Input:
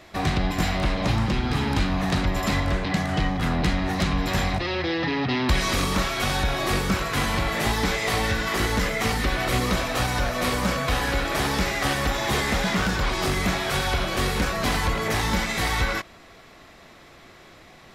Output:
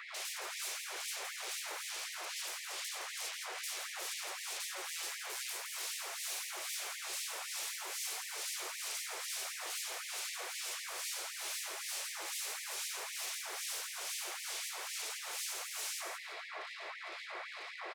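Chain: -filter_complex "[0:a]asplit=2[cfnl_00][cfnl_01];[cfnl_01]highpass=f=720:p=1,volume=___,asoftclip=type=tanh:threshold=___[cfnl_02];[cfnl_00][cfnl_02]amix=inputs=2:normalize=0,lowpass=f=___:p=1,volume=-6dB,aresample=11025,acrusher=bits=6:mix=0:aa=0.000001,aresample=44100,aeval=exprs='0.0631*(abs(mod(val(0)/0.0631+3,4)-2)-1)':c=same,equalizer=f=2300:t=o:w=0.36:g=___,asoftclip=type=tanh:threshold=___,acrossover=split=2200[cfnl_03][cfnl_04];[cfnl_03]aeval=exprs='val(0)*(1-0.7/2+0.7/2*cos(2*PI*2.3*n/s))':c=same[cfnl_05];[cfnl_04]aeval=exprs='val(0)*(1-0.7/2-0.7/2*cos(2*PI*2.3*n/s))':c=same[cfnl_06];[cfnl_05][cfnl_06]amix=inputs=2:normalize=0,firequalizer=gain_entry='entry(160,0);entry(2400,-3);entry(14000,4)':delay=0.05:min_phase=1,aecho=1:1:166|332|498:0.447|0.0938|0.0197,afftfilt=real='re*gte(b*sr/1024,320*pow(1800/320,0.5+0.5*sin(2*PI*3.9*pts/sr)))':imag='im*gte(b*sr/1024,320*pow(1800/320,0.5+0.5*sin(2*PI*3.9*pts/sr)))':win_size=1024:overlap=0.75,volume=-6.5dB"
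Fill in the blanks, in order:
26dB, -10.5dB, 2800, 5, -27dB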